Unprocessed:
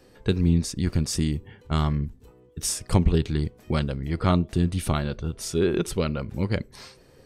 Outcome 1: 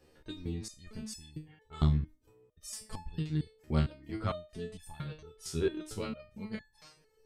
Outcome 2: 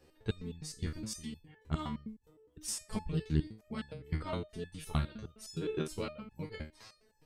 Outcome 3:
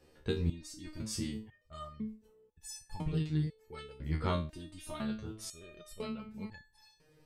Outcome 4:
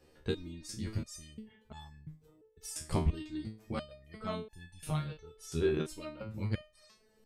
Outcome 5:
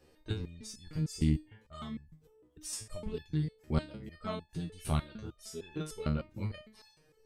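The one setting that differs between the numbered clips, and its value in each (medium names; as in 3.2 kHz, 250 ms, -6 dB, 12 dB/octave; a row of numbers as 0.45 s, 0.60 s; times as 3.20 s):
resonator arpeggio, rate: 4.4 Hz, 9.7 Hz, 2 Hz, 2.9 Hz, 6.6 Hz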